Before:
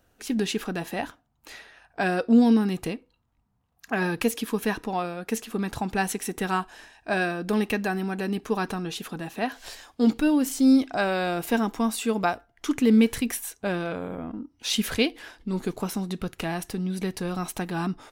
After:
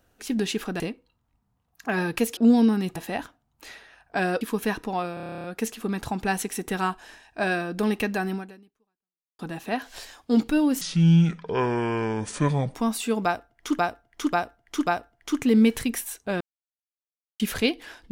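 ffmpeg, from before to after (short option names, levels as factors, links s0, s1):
-filter_complex "[0:a]asplit=23[s0][s1][s2][s3][s4][s5][s6][s7][s8][s9][s10][s11][s12][s13][s14][s15][s16][s17][s18][s19][s20][s21][s22];[s0]atrim=end=0.802[s23];[s1]atrim=start=2.838:end=4.412[s24];[s2]atrim=start=2.248:end=2.842[s25];[s3]atrim=start=0.798:end=2.252[s26];[s4]atrim=start=4.408:end=5.172[s27];[s5]atrim=start=5.138:end=5.172[s28];[s6]atrim=start=5.138:end=5.172[s29];[s7]atrim=start=5.138:end=5.172[s30];[s8]atrim=start=5.138:end=5.172[s31];[s9]atrim=start=5.138:end=5.172[s32];[s10]atrim=start=5.138:end=5.172[s33];[s11]atrim=start=5.138:end=5.172[s34];[s12]atrim=start=5.138:end=5.172[s35];[s13]atrim=start=5.138:end=5.172[s36];[s14]atrim=start=5.138:end=9.09,asetpts=PTS-STARTPTS,afade=t=out:st=2.912:d=1.04:c=exp[s37];[s15]atrim=start=9.09:end=10.514,asetpts=PTS-STARTPTS,afade=t=in:d=0.004:c=hsin[s38];[s16]atrim=start=10.51:end=11.73,asetpts=PTS-STARTPTS,asetrate=27783,aresample=44100[s39];[s17]atrim=start=11.726:end=12.772[s40];[s18]atrim=start=12.228:end=12.772[s41];[s19]atrim=start=12.228:end=12.772[s42];[s20]atrim=start=12.228:end=13.77,asetpts=PTS-STARTPTS,afade=t=out:st=1.538:d=0.004:c=hsin[s43];[s21]atrim=start=13.77:end=14.76,asetpts=PTS-STARTPTS,volume=0[s44];[s22]atrim=start=14.76,asetpts=PTS-STARTPTS,afade=t=in:d=0.004:c=hsin[s45];[s23][s24]acrossfade=d=0.004:c1=hsin:c2=hsin[s46];[s46][s25]acrossfade=d=0.004:c1=hsin:c2=hsin[s47];[s47][s26]acrossfade=d=0.004:c1=hsin:c2=hsin[s48];[s48][s27]acrossfade=d=0.004:c1=hsin:c2=hsin[s49];[s49][s28]acrossfade=d=0.004:c1=hsin:c2=hsin[s50];[s50][s29]acrossfade=d=0.004:c1=hsin:c2=hsin[s51];[s51][s30]acrossfade=d=0.004:c1=hsin:c2=hsin[s52];[s52][s31]acrossfade=d=0.004:c1=hsin:c2=hsin[s53];[s53][s32]acrossfade=d=0.004:c1=hsin:c2=hsin[s54];[s54][s33]acrossfade=d=0.004:c1=hsin:c2=hsin[s55];[s55][s34]acrossfade=d=0.004:c1=hsin:c2=hsin[s56];[s56][s35]acrossfade=d=0.004:c1=hsin:c2=hsin[s57];[s57][s36]acrossfade=d=0.004:c1=hsin:c2=hsin[s58];[s37][s38]concat=n=2:v=0:a=1[s59];[s58][s59]acrossfade=d=0.004:c1=hsin:c2=hsin[s60];[s60][s39]acrossfade=d=0.004:c1=hsin:c2=hsin[s61];[s61][s40]acrossfade=d=0.004:c1=hsin:c2=hsin[s62];[s62][s41]acrossfade=d=0.004:c1=hsin:c2=hsin[s63];[s63][s42]acrossfade=d=0.004:c1=hsin:c2=hsin[s64];[s43][s44][s45]concat=n=3:v=0:a=1[s65];[s64][s65]acrossfade=d=0.004:c1=hsin:c2=hsin"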